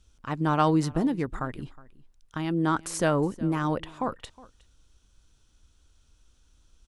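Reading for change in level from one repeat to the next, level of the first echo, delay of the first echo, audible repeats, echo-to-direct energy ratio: no regular repeats, -21.5 dB, 365 ms, 1, -21.5 dB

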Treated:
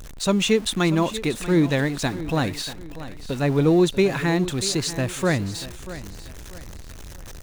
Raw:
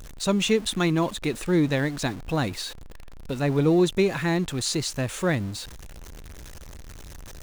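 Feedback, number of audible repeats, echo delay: 34%, 3, 638 ms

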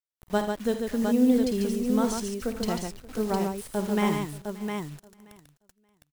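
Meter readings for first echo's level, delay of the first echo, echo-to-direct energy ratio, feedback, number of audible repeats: -10.0 dB, 52 ms, -1.0 dB, no regular repeats, 6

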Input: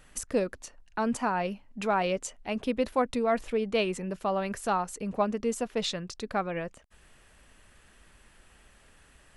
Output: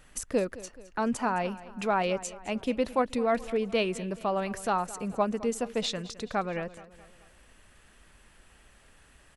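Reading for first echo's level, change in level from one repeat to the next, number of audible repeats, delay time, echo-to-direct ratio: -17.5 dB, -6.0 dB, 3, 214 ms, -16.5 dB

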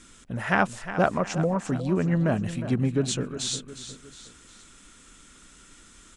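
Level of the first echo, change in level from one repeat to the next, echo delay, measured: -12.0 dB, -6.5 dB, 359 ms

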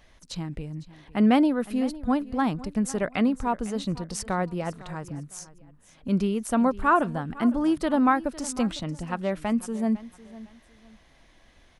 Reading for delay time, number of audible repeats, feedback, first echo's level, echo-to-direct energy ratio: 505 ms, 2, 28%, -18.0 dB, -17.5 dB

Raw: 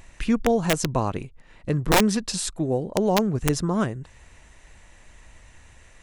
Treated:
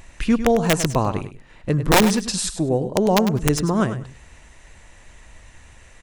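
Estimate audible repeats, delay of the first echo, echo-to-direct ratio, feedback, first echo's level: 2, 101 ms, -11.0 dB, 18%, -11.0 dB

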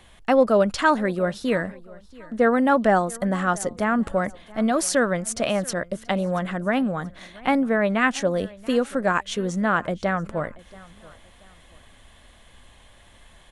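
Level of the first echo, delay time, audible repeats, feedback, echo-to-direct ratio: -22.0 dB, 681 ms, 2, 34%, -21.5 dB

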